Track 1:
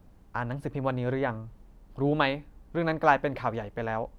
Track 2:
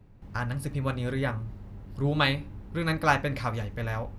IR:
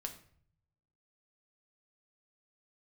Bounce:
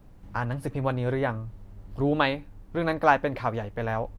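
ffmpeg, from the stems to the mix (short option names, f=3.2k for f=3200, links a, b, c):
-filter_complex "[0:a]volume=1.5dB,asplit=2[a][b];[1:a]asubboost=boost=3:cutoff=100,adelay=11,volume=-1.5dB[c];[b]apad=whole_len=184941[d];[c][d]sidechaincompress=threshold=-30dB:ratio=8:attack=16:release=1380[e];[a][e]amix=inputs=2:normalize=0"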